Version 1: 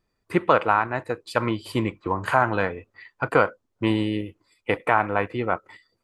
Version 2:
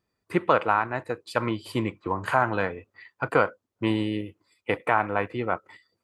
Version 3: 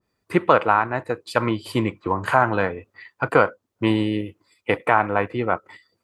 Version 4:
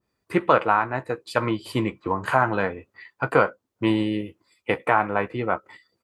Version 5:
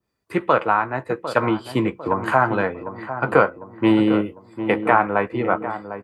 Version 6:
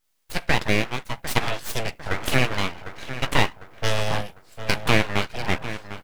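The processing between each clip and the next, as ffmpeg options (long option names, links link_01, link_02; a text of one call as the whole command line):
ffmpeg -i in.wav -af "highpass=66,volume=-2.5dB" out.wav
ffmpeg -i in.wav -af "adynamicequalizer=threshold=0.0158:dfrequency=1800:dqfactor=0.7:tfrequency=1800:tqfactor=0.7:attack=5:release=100:ratio=0.375:range=2:mode=cutabove:tftype=highshelf,volume=5dB" out.wav
ffmpeg -i in.wav -filter_complex "[0:a]asplit=2[link_01][link_02];[link_02]adelay=15,volume=-11dB[link_03];[link_01][link_03]amix=inputs=2:normalize=0,volume=-2.5dB" out.wav
ffmpeg -i in.wav -filter_complex "[0:a]acrossover=split=130|2200[link_01][link_02][link_03];[link_02]dynaudnorm=framelen=150:gausssize=7:maxgain=11.5dB[link_04];[link_01][link_04][link_03]amix=inputs=3:normalize=0,asplit=2[link_05][link_06];[link_06]adelay=751,lowpass=frequency=1100:poles=1,volume=-10dB,asplit=2[link_07][link_08];[link_08]adelay=751,lowpass=frequency=1100:poles=1,volume=0.51,asplit=2[link_09][link_10];[link_10]adelay=751,lowpass=frequency=1100:poles=1,volume=0.51,asplit=2[link_11][link_12];[link_12]adelay=751,lowpass=frequency=1100:poles=1,volume=0.51,asplit=2[link_13][link_14];[link_14]adelay=751,lowpass=frequency=1100:poles=1,volume=0.51,asplit=2[link_15][link_16];[link_16]adelay=751,lowpass=frequency=1100:poles=1,volume=0.51[link_17];[link_05][link_07][link_09][link_11][link_13][link_15][link_17]amix=inputs=7:normalize=0,volume=-1dB" out.wav
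ffmpeg -i in.wav -af "crystalizer=i=9:c=0,aeval=exprs='abs(val(0))':channel_layout=same,volume=-5.5dB" out.wav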